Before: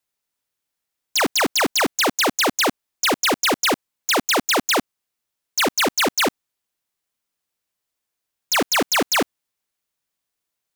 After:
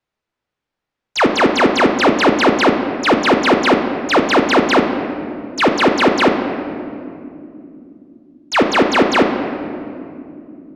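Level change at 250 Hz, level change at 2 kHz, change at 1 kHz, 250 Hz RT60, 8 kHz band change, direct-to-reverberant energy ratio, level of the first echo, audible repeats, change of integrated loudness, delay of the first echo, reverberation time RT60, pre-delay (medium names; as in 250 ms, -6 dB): +11.5 dB, +5.0 dB, +7.5 dB, 4.9 s, -8.5 dB, 4.0 dB, no echo, no echo, +5.0 dB, no echo, 2.8 s, 8 ms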